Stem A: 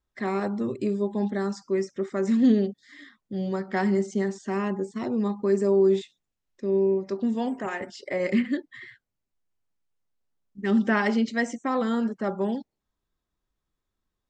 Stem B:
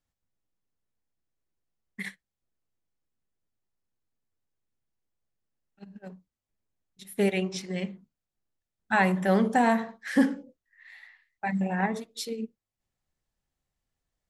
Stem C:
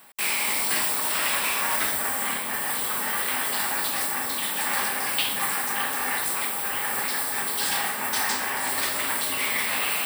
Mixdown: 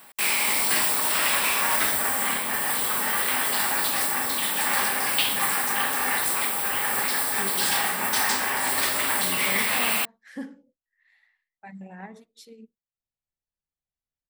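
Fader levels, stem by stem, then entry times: off, -13.5 dB, +2.0 dB; off, 0.20 s, 0.00 s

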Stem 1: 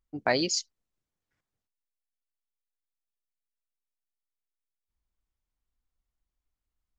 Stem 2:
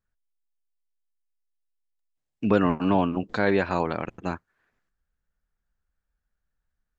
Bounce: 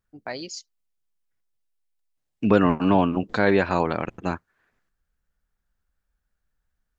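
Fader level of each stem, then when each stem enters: -8.0, +3.0 dB; 0.00, 0.00 s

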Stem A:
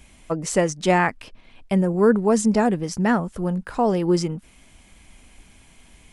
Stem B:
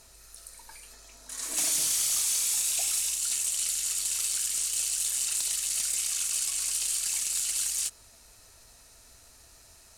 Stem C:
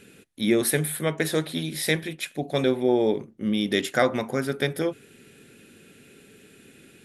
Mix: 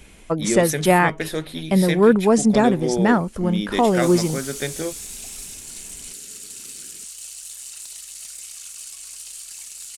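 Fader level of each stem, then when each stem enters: +2.5, -7.5, -2.0 dB; 0.00, 2.45, 0.00 s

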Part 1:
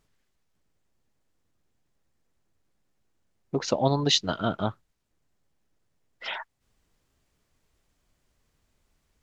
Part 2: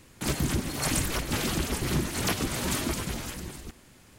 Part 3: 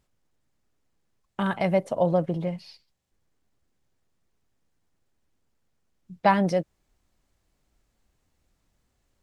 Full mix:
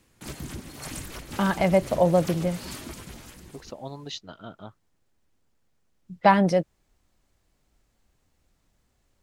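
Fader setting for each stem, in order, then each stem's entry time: -14.5, -9.5, +2.5 dB; 0.00, 0.00, 0.00 s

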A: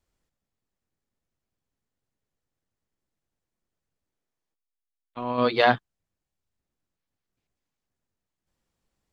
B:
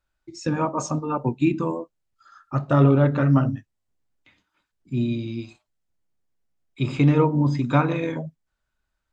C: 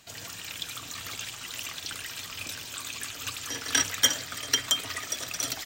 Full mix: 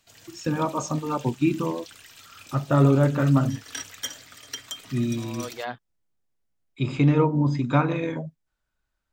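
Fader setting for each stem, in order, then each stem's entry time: -14.0, -1.5, -10.5 dB; 0.00, 0.00, 0.00 s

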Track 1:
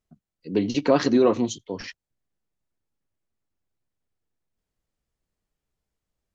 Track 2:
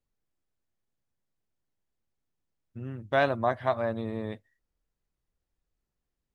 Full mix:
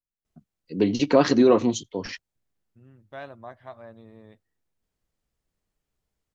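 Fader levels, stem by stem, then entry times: +1.5, -15.0 dB; 0.25, 0.00 s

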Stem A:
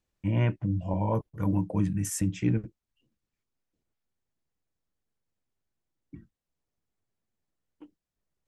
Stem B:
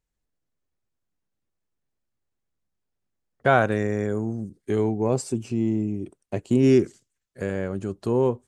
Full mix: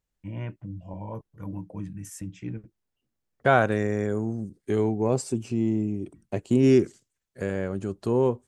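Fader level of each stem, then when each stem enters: -9.0, -1.0 dB; 0.00, 0.00 s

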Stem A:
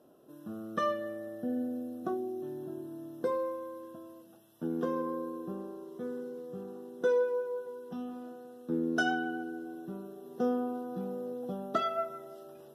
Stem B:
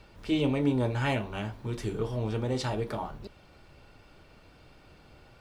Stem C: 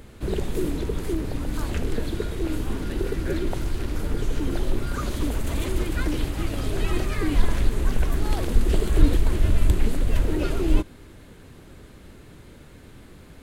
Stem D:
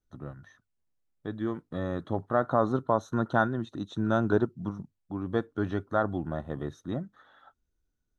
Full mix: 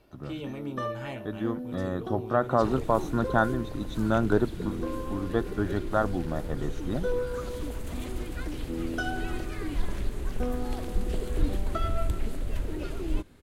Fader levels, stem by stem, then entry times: -3.0, -10.0, -9.5, +1.0 dB; 0.00, 0.00, 2.40, 0.00 s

